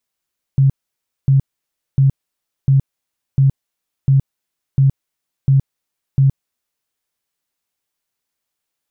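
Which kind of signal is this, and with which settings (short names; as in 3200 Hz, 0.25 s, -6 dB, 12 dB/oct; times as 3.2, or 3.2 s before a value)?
tone bursts 136 Hz, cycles 16, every 0.70 s, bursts 9, -8 dBFS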